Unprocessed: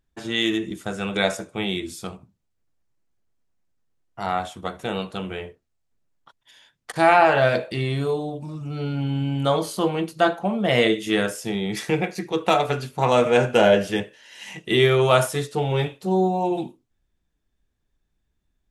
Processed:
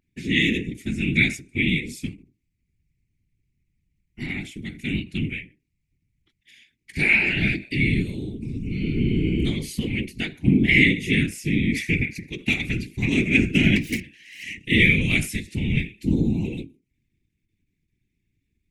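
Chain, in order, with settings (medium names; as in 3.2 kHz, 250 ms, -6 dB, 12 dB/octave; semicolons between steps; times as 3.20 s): 13.76–14.43 s: self-modulated delay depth 0.7 ms; FFT filter 100 Hz 0 dB, 250 Hz +9 dB, 480 Hz -27 dB, 1.3 kHz -28 dB, 2.2 kHz +13 dB, 3.2 kHz -2 dB; whisper effect; endings held to a fixed fall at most 190 dB/s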